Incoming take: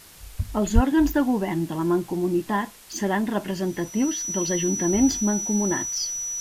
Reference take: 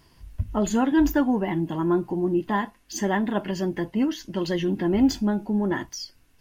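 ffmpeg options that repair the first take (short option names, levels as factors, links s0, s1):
-filter_complex "[0:a]bandreject=f=5900:w=30,asplit=3[s0][s1][s2];[s0]afade=t=out:st=0.74:d=0.02[s3];[s1]highpass=f=140:w=0.5412,highpass=f=140:w=1.3066,afade=t=in:st=0.74:d=0.02,afade=t=out:st=0.86:d=0.02[s4];[s2]afade=t=in:st=0.86:d=0.02[s5];[s3][s4][s5]amix=inputs=3:normalize=0,afwtdn=0.0045,asetnsamples=n=441:p=0,asendcmd='5.96 volume volume -5.5dB',volume=1"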